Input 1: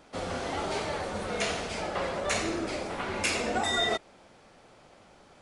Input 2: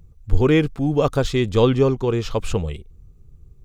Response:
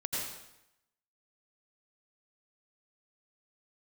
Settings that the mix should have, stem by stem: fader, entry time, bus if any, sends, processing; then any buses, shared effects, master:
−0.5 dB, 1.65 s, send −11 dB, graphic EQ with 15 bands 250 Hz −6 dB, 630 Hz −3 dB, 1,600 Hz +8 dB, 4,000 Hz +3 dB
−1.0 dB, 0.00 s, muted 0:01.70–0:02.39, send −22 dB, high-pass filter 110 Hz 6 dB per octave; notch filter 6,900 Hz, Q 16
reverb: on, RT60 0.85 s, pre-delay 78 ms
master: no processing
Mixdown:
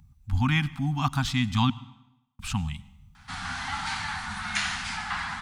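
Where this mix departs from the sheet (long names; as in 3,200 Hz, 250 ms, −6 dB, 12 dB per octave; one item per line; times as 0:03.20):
stem 1: entry 1.65 s → 3.15 s
master: extra elliptic band-stop filter 250–800 Hz, stop band 40 dB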